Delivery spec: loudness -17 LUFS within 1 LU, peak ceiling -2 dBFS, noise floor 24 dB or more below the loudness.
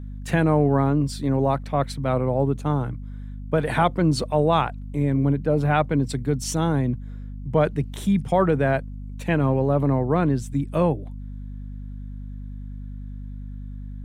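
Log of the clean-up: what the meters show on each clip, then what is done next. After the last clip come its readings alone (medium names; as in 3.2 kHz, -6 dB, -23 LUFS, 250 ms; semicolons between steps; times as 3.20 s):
hum 50 Hz; highest harmonic 250 Hz; hum level -32 dBFS; loudness -22.5 LUFS; peak level -7.0 dBFS; loudness target -17.0 LUFS
-> de-hum 50 Hz, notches 5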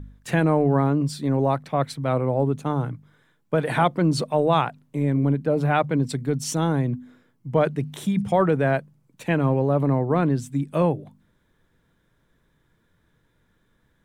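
hum not found; loudness -23.0 LUFS; peak level -7.0 dBFS; loudness target -17.0 LUFS
-> trim +6 dB; peak limiter -2 dBFS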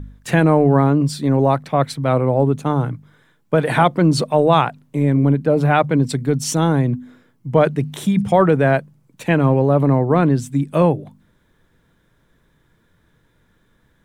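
loudness -17.0 LUFS; peak level -2.0 dBFS; noise floor -61 dBFS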